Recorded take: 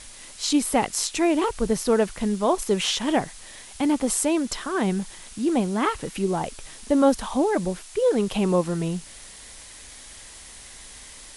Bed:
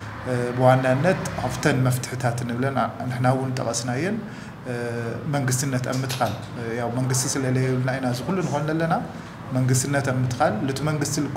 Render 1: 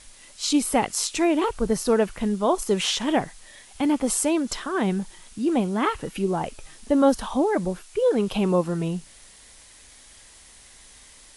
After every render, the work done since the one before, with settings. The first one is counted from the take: noise print and reduce 6 dB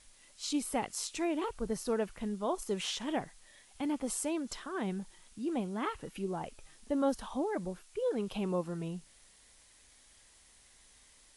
trim -12 dB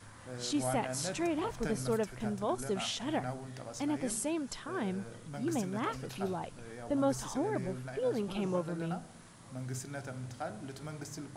add bed -19.5 dB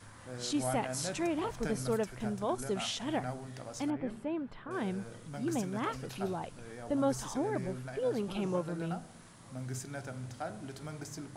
3.90–4.71 s: distance through air 500 m

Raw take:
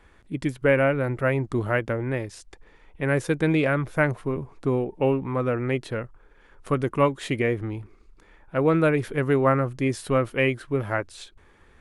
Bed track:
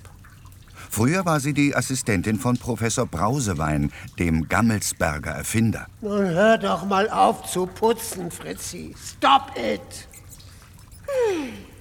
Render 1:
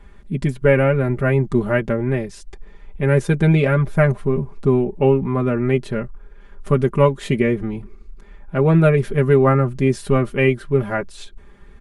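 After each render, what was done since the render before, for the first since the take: bass shelf 290 Hz +11.5 dB; comb 5 ms, depth 80%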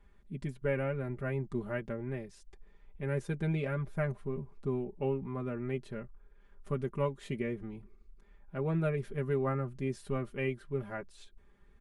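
trim -17.5 dB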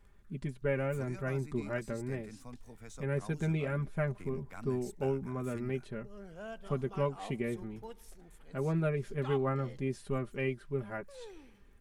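add bed track -28 dB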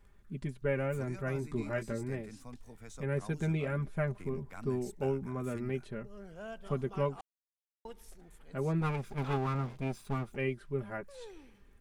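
1.34–2.05 s: doubling 18 ms -7 dB; 7.21–7.85 s: mute; 8.81–10.36 s: comb filter that takes the minimum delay 0.81 ms

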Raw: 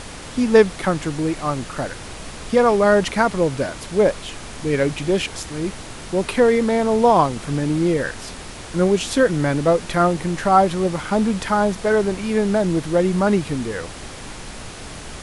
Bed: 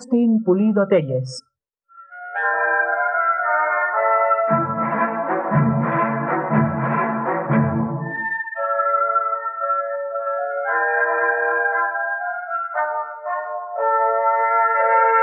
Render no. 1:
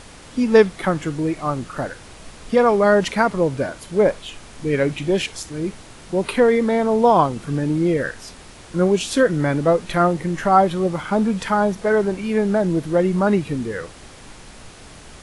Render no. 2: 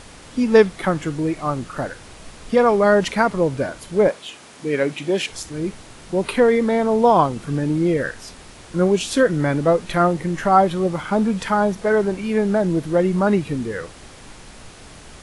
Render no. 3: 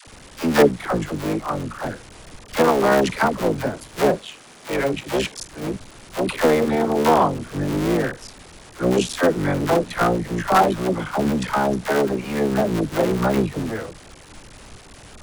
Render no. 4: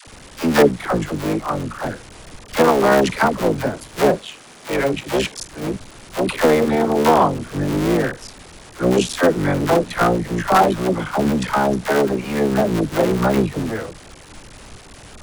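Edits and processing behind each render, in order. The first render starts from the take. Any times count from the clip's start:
noise print and reduce 7 dB
4.08–5.29 s: Bessel high-pass 220 Hz
cycle switcher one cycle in 3, muted; phase dispersion lows, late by 76 ms, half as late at 540 Hz
trim +2.5 dB; peak limiter -2 dBFS, peak gain reduction 2 dB

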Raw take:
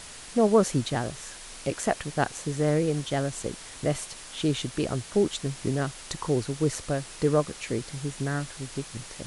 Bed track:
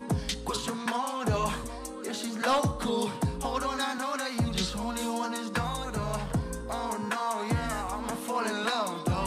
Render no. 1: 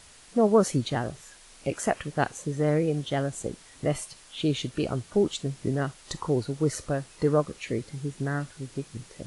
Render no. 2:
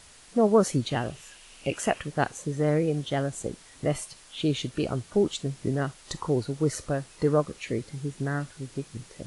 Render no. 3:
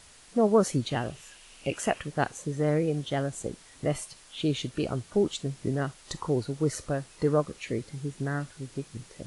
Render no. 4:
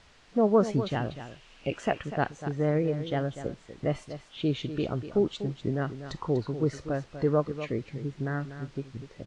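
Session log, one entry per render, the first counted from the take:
noise print and reduce 9 dB
0.90–1.98 s: peaking EQ 2.8 kHz +10 dB 0.36 oct
trim -1.5 dB
distance through air 160 m; on a send: delay 245 ms -11.5 dB

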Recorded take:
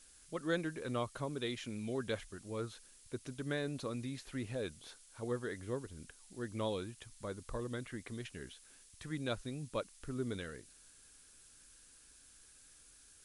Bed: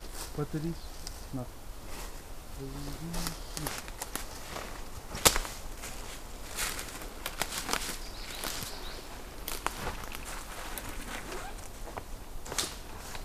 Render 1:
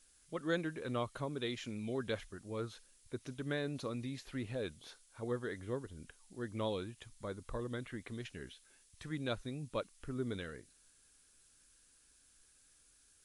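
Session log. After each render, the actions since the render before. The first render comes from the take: noise print and reduce 6 dB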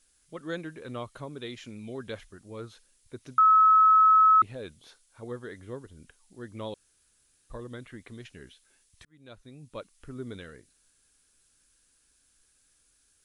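3.38–4.42 s: bleep 1.29 kHz -15 dBFS; 6.74–7.50 s: room tone; 9.05–9.96 s: fade in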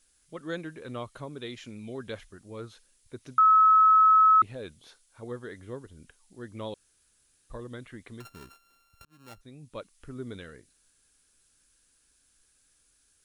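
8.20–9.41 s: sorted samples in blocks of 32 samples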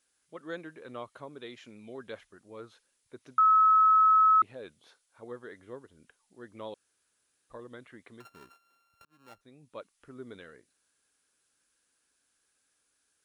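high-pass 500 Hz 6 dB/octave; treble shelf 2.5 kHz -9.5 dB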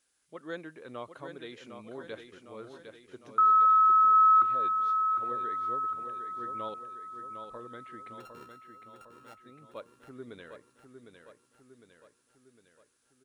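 feedback delay 756 ms, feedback 55%, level -7.5 dB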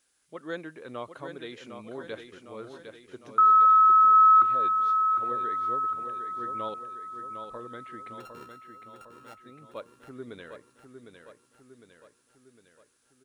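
trim +3.5 dB

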